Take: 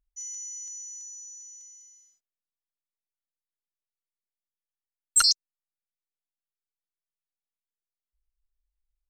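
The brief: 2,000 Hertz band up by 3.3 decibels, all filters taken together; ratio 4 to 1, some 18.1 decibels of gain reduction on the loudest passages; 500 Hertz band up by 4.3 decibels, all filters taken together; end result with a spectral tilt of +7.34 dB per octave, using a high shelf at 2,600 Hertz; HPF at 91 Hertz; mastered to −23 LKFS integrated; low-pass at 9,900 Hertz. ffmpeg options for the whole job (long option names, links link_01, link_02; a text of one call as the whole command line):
ffmpeg -i in.wav -af "highpass=91,lowpass=9900,equalizer=frequency=500:width_type=o:gain=5,equalizer=frequency=2000:width_type=o:gain=3.5,highshelf=frequency=2600:gain=3.5,acompressor=threshold=-36dB:ratio=4,volume=14dB" out.wav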